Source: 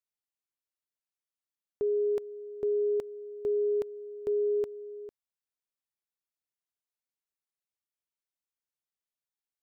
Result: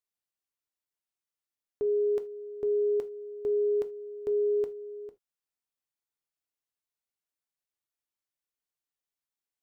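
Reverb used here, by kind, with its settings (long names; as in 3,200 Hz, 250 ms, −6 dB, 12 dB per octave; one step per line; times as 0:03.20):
reverb whose tail is shaped and stops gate 100 ms falling, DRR 9 dB
level −1 dB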